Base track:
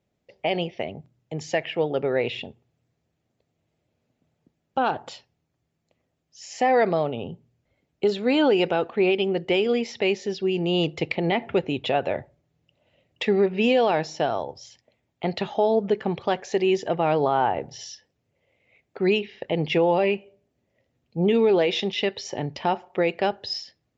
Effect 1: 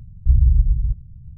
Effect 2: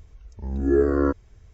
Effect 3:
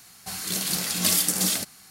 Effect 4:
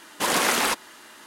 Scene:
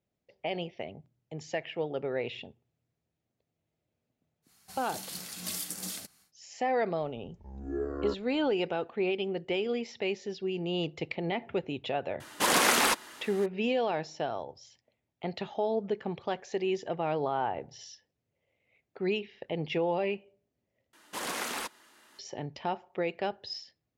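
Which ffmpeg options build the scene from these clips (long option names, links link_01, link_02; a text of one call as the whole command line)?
ffmpeg -i bed.wav -i cue0.wav -i cue1.wav -i cue2.wav -i cue3.wav -filter_complex "[4:a]asplit=2[link_01][link_02];[0:a]volume=-9dB[link_03];[2:a]equalizer=frequency=780:width_type=o:width=0.98:gain=7.5[link_04];[link_03]asplit=2[link_05][link_06];[link_05]atrim=end=20.934[link_07];[link_02]atrim=end=1.26,asetpts=PTS-STARTPTS,volume=-13dB[link_08];[link_06]atrim=start=22.186[link_09];[3:a]atrim=end=1.9,asetpts=PTS-STARTPTS,volume=-14.5dB,afade=type=in:duration=0.1,afade=type=out:start_time=1.8:duration=0.1,adelay=4420[link_10];[link_04]atrim=end=1.53,asetpts=PTS-STARTPTS,volume=-16dB,afade=type=in:duration=0.004:curve=hsin,afade=type=out:start_time=1.526:duration=0.004:curve=hsin,adelay=7020[link_11];[link_01]atrim=end=1.26,asetpts=PTS-STARTPTS,volume=-2dB,afade=type=in:duration=0.004:curve=hsin,afade=type=out:start_time=1.256:duration=0.004:curve=hsin,adelay=538020S[link_12];[link_07][link_08]acrossfade=duration=0.004:curve1=hsin:curve2=hsin[link_13];[link_13][link_09]acrossfade=duration=0.004:curve1=hsin:curve2=hsin[link_14];[link_14][link_10][link_11][link_12]amix=inputs=4:normalize=0" out.wav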